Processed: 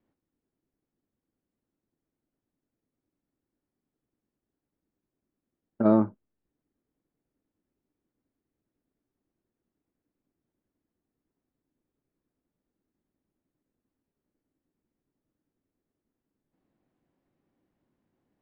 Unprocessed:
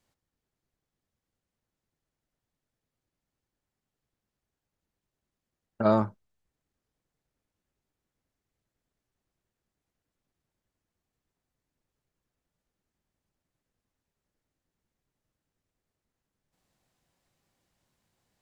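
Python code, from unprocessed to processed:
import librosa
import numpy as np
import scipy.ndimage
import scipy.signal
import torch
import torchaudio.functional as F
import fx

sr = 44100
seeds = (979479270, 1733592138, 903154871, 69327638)

y = scipy.signal.sosfilt(scipy.signal.butter(2, 2200.0, 'lowpass', fs=sr, output='sos'), x)
y = fx.peak_eq(y, sr, hz=290.0, db=14.0, octaves=1.3)
y = F.gain(torch.from_numpy(y), -5.0).numpy()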